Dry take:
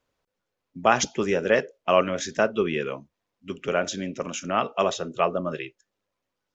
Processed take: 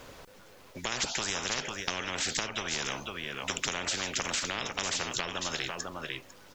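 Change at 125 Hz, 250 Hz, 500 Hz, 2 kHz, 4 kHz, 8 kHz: -7.5 dB, -11.5 dB, -16.5 dB, -3.5 dB, +3.5 dB, no reading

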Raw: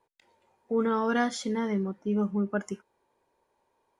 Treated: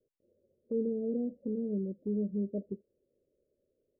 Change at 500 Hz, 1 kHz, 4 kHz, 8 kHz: -5.0 dB, under -30 dB, under -40 dB, under -35 dB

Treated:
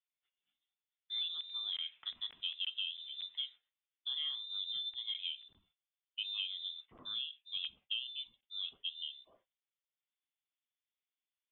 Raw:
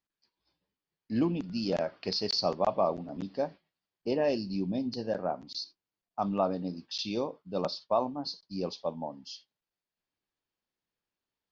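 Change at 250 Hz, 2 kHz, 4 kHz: under -40 dB, -3.5 dB, +3.0 dB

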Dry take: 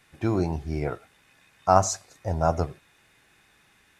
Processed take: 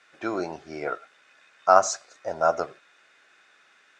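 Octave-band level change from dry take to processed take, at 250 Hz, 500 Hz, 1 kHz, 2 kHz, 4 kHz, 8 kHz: -6.5 dB, +2.0 dB, +1.5 dB, +6.5 dB, +1.0 dB, -0.5 dB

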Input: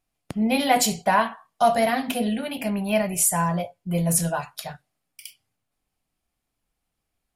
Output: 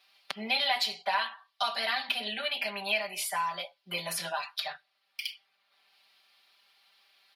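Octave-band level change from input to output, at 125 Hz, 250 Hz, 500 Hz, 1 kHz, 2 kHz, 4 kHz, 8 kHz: -25.0 dB, -22.5 dB, -13.5 dB, -9.5 dB, -2.0 dB, +2.5 dB, -15.5 dB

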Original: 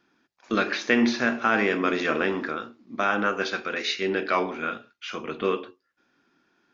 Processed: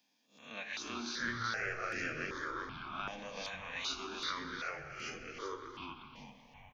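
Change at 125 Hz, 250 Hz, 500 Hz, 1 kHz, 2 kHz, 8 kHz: -10.0 dB, -20.0 dB, -19.0 dB, -13.5 dB, -12.5 dB, no reading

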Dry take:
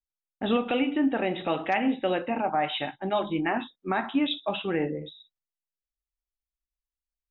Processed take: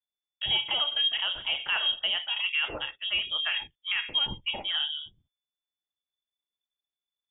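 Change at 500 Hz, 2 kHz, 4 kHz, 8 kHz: -17.5 dB, +2.5 dB, +12.0 dB, no reading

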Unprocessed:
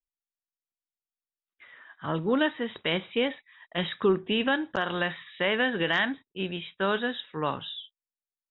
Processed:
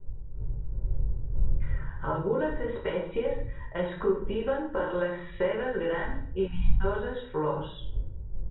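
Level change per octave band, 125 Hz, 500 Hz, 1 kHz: +5.0 dB, +1.0 dB, -2.5 dB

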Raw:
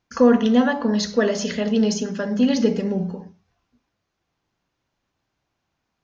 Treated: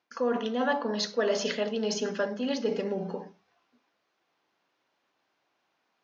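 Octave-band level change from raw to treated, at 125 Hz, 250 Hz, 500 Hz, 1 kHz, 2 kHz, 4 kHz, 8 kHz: -13.5 dB, -14.5 dB, -7.0 dB, -5.0 dB, -5.5 dB, -4.0 dB, no reading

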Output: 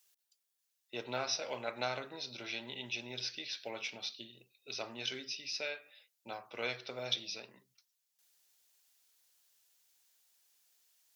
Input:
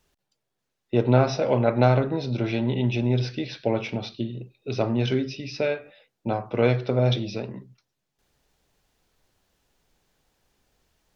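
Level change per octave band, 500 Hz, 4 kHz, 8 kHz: -19.0 dB, -2.0 dB, no reading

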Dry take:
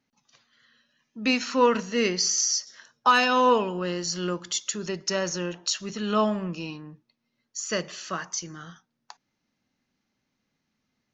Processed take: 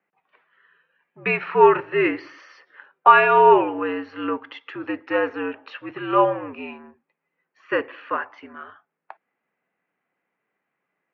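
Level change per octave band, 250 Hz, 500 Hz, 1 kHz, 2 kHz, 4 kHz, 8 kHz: +0.5 dB, +6.5 dB, +7.5 dB, +5.5 dB, -10.0 dB, no reading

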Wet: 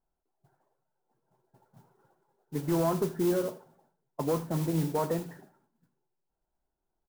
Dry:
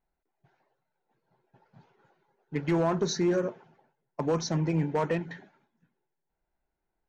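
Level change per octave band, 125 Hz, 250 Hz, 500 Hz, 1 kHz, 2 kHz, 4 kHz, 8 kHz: -2.0 dB, -1.5 dB, -1.5 dB, -1.5 dB, -7.5 dB, -7.5 dB, no reading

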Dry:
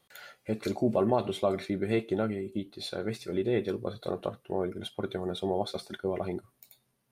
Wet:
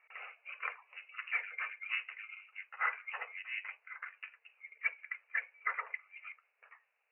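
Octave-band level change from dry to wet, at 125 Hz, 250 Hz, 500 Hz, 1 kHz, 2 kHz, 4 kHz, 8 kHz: under -40 dB, under -40 dB, -32.5 dB, -7.0 dB, +8.5 dB, -11.5 dB, under -30 dB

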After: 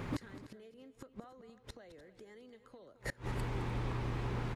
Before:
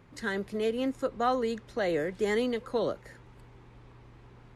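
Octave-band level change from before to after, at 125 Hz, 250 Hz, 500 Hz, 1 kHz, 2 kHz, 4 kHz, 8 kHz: +6.5 dB, -10.5 dB, -18.0 dB, -12.5 dB, -10.5 dB, -11.0 dB, -6.5 dB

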